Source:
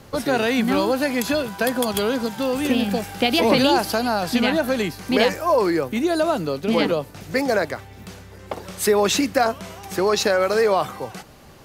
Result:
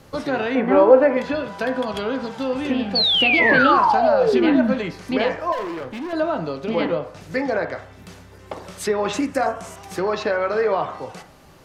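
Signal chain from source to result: 0.55–1.17 s: graphic EQ 125/500/1000/2000/4000/8000 Hz -4/+12/+4/+3/-10/-5 dB; low-pass that closes with the level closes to 2.9 kHz, closed at -17 dBFS; 2.95–4.73 s: painted sound fall 200–4600 Hz -15 dBFS; 5.52–6.13 s: hard clipper -25 dBFS, distortion -18 dB; 9.13–9.76 s: resonant high shelf 5.8 kHz +13 dB, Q 1.5; on a send: reverberation RT60 0.60 s, pre-delay 3 ms, DRR 5.5 dB; on the sum: trim -3 dB

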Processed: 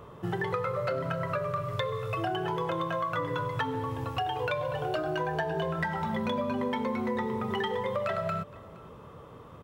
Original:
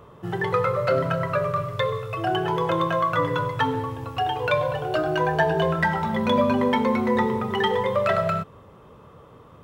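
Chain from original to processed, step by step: compression, threshold -28 dBFS, peak gain reduction 12 dB; delay 467 ms -22.5 dB

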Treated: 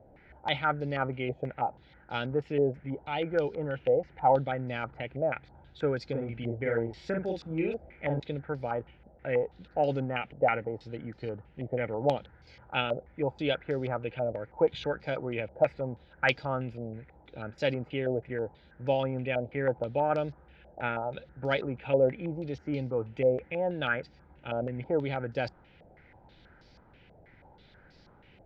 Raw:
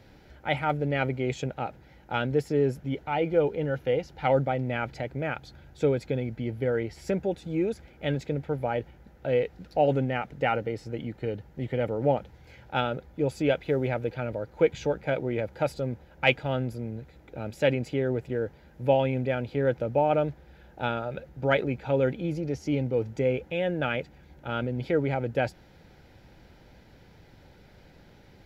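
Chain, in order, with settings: 6.10–8.20 s: doubling 43 ms -3 dB; step-sequenced low-pass 6.2 Hz 660–4900 Hz; trim -5.5 dB

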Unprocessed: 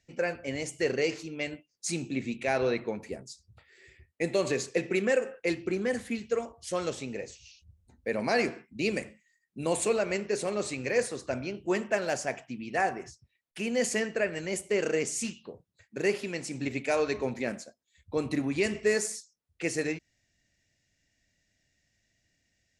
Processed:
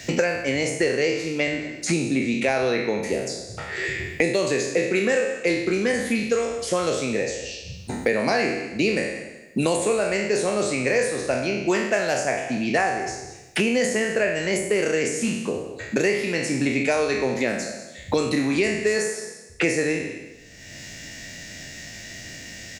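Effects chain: spectral sustain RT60 0.66 s; delay 191 ms -19.5 dB; three bands compressed up and down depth 100%; trim +4.5 dB

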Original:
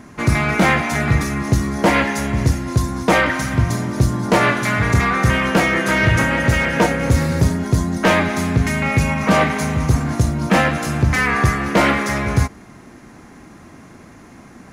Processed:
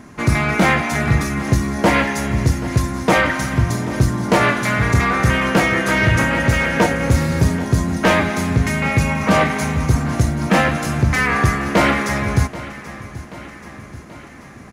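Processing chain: feedback delay 782 ms, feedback 58%, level -16.5 dB

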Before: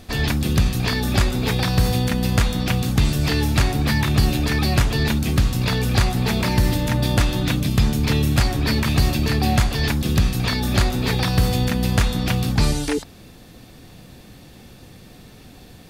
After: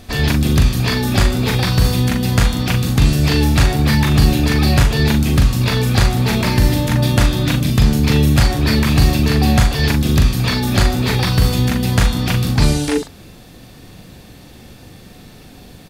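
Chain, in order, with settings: doubling 41 ms -5 dB; trim +3 dB

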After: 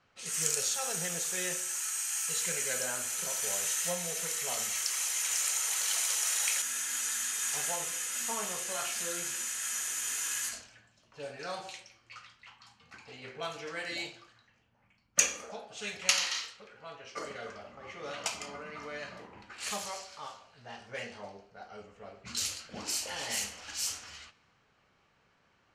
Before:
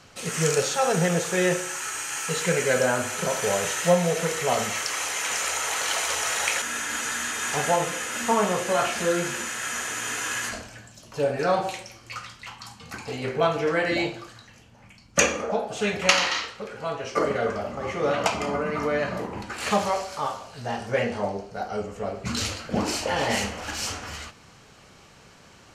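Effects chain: pre-emphasis filter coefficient 0.9; level-controlled noise filter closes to 1.5 kHz, open at -32 dBFS

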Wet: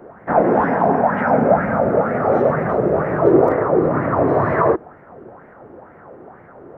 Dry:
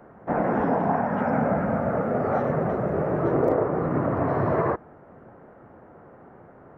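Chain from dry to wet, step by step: sweeping bell 2.1 Hz 340–2100 Hz +12 dB; trim +3.5 dB

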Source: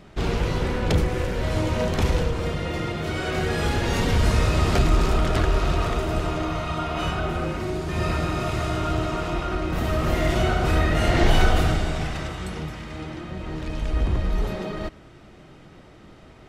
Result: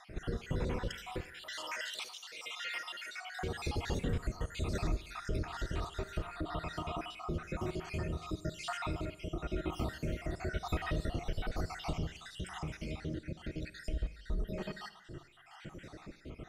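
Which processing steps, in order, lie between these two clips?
random holes in the spectrogram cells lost 59%; 1.23–3.18 s: Chebyshev high-pass 1.9 kHz, order 2; compression 2.5:1, threshold -43 dBFS, peak gain reduction 19.5 dB; rotary cabinet horn 1 Hz; Schroeder reverb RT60 0.79 s, DRR 14.5 dB; trim +4.5 dB

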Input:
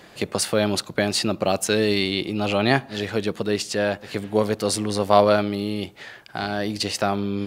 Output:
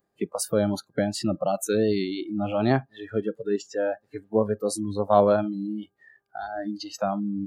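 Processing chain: vibrato 2.8 Hz 39 cents; peaking EQ 2.9 kHz -14.5 dB 2.1 oct; mains buzz 400 Hz, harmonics 4, -57 dBFS -3 dB/octave; spectral noise reduction 27 dB

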